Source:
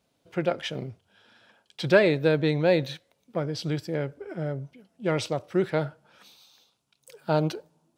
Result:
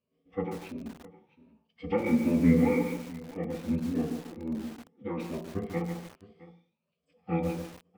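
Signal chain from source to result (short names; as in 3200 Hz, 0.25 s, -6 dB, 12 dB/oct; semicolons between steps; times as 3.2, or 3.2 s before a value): moving spectral ripple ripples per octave 1.5, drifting +1.3 Hz, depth 16 dB; vowel filter u; formant-preserving pitch shift -10.5 st; echo 0.663 s -19.5 dB; on a send at -3 dB: reverb RT60 0.40 s, pre-delay 3 ms; on the sum: lo-fi delay 0.144 s, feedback 35%, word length 7-bit, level -6 dB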